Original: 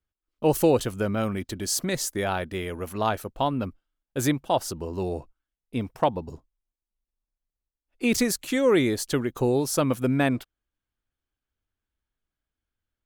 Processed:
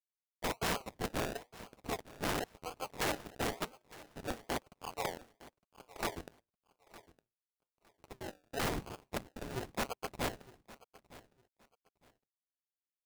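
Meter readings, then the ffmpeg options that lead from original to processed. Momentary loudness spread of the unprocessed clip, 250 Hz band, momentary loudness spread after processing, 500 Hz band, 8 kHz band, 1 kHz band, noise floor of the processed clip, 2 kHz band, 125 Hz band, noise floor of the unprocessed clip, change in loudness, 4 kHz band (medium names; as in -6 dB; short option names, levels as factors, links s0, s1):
11 LU, -18.0 dB, 22 LU, -16.0 dB, -14.0 dB, -10.5 dB, under -85 dBFS, -8.5 dB, -16.0 dB, under -85 dBFS, -13.5 dB, -8.5 dB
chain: -filter_complex "[0:a]aphaser=in_gain=1:out_gain=1:delay=1.6:decay=0.74:speed=1.5:type=triangular,aemphasis=mode=reproduction:type=75kf,afftfilt=real='re*between(b*sr/4096,540,1800)':imag='im*between(b*sr/4096,540,1800)':win_size=4096:overlap=0.75,aresample=8000,acrusher=bits=6:mix=0:aa=0.000001,aresample=44100,flanger=delay=0.5:depth=8.8:regen=82:speed=0.4:shape=sinusoidal,acrossover=split=1200[s0][s1];[s0]aeval=exprs='val(0)*(1-0.7/2+0.7/2*cos(2*PI*1.4*n/s))':c=same[s2];[s1]aeval=exprs='val(0)*(1-0.7/2-0.7/2*cos(2*PI*1.4*n/s))':c=same[s3];[s2][s3]amix=inputs=2:normalize=0,acrusher=samples=33:mix=1:aa=0.000001:lfo=1:lforange=19.8:lforate=0.97,aeval=exprs='val(0)*sin(2*PI*130*n/s)':c=same,aeval=exprs='(mod(63.1*val(0)+1,2)-1)/63.1':c=same,aecho=1:1:910|1820:0.112|0.0258,volume=2.66"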